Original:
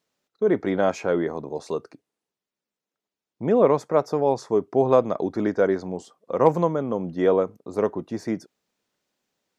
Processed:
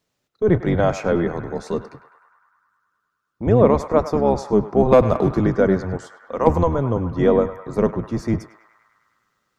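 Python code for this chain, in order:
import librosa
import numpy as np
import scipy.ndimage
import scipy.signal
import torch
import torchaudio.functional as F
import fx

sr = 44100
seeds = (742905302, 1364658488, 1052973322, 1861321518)

y = fx.octave_divider(x, sr, octaves=1, level_db=2.0)
y = fx.leveller(y, sr, passes=1, at=(4.92, 5.39))
y = fx.low_shelf(y, sr, hz=430.0, db=-11.5, at=(5.97, 6.47))
y = fx.echo_banded(y, sr, ms=102, feedback_pct=80, hz=1400.0, wet_db=-11.0)
y = y * 10.0 ** (2.5 / 20.0)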